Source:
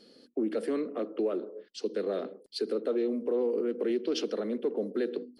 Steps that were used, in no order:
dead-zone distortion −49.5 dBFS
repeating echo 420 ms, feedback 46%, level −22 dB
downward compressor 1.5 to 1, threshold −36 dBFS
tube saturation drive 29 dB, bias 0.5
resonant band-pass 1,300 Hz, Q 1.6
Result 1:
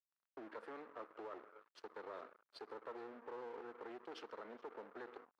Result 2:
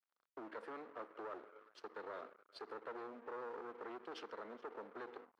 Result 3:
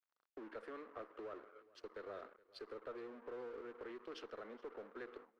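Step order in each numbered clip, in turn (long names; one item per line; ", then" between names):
downward compressor, then repeating echo, then tube saturation, then dead-zone distortion, then resonant band-pass
repeating echo, then dead-zone distortion, then tube saturation, then downward compressor, then resonant band-pass
downward compressor, then dead-zone distortion, then resonant band-pass, then tube saturation, then repeating echo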